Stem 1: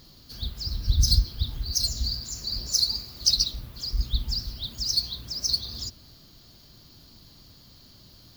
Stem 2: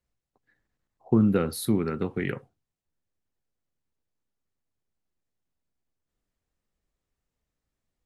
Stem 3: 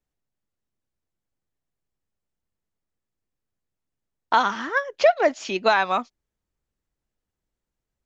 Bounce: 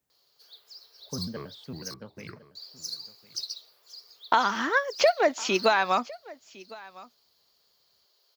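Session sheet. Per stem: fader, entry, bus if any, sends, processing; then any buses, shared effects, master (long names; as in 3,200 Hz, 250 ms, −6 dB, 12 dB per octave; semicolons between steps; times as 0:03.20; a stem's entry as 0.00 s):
−12.5 dB, 0.10 s, muted 0:01.94–0:02.55, no send, echo send −19 dB, elliptic high-pass filter 410 Hz
−11.0 dB, 0.00 s, no send, echo send −18 dB, low-pass filter 5,300 Hz 24 dB per octave; parametric band 290 Hz −12.5 dB 0.61 octaves; pitch modulation by a square or saw wave square 5.5 Hz, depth 250 cents
+2.5 dB, 0.00 s, no send, echo send −21.5 dB, high-shelf EQ 9,200 Hz +10.5 dB; downward compressor 2.5 to 1, threshold −23 dBFS, peak gain reduction 8 dB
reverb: not used
echo: single-tap delay 1,057 ms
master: high-pass filter 93 Hz 12 dB per octave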